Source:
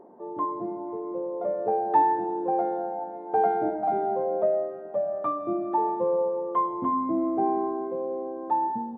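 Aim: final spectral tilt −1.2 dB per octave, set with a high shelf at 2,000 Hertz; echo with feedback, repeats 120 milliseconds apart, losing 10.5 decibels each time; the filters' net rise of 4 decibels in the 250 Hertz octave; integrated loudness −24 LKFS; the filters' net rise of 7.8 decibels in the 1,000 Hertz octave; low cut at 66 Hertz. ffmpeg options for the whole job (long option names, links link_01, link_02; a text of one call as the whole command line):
ffmpeg -i in.wav -af "highpass=66,equalizer=frequency=250:width_type=o:gain=5,equalizer=frequency=1000:width_type=o:gain=8,highshelf=frequency=2000:gain=6,aecho=1:1:120|240|360:0.299|0.0896|0.0269,volume=-3.5dB" out.wav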